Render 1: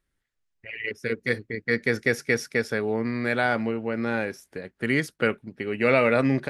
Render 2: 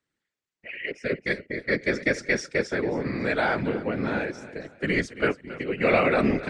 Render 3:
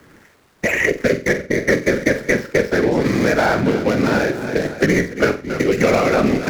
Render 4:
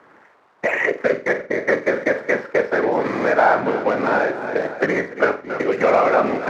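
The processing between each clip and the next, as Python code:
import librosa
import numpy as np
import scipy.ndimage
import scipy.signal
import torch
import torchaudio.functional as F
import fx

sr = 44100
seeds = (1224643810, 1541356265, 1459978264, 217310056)

y1 = scipy.signal.sosfilt(scipy.signal.cheby1(4, 1.0, [140.0, 8100.0], 'bandpass', fs=sr, output='sos'), x)
y1 = fx.echo_feedback(y1, sr, ms=274, feedback_pct=33, wet_db=-15.5)
y1 = fx.whisperise(y1, sr, seeds[0])
y2 = scipy.ndimage.median_filter(y1, 15, mode='constant')
y2 = fx.room_flutter(y2, sr, wall_m=7.8, rt60_s=0.27)
y2 = fx.band_squash(y2, sr, depth_pct=100)
y2 = F.gain(torch.from_numpy(y2), 8.5).numpy()
y3 = fx.bandpass_q(y2, sr, hz=910.0, q=1.4)
y3 = F.gain(torch.from_numpy(y3), 5.5).numpy()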